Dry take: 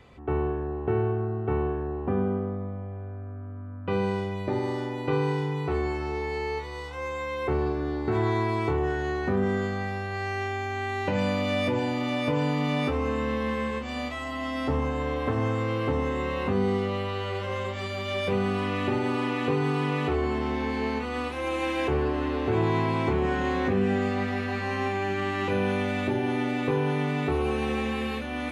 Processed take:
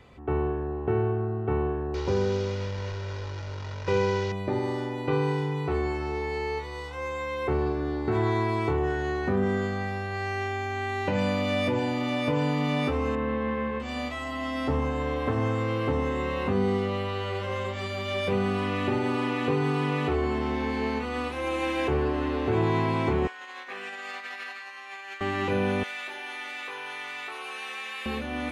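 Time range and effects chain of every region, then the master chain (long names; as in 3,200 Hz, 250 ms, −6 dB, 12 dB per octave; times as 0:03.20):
0:01.94–0:04.32: linear delta modulator 32 kbit/s, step −33.5 dBFS + comb filter 2.1 ms, depth 70%
0:13.15–0:13.80: low-pass filter 2,200 Hz + parametric band 86 Hz −7 dB 0.27 octaves
0:23.27–0:25.21: high-pass filter 1,300 Hz + compressor whose output falls as the input rises −39 dBFS, ratio −0.5
0:25.83–0:28.06: high-pass filter 1,400 Hz + envelope flattener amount 50%
whole clip: no processing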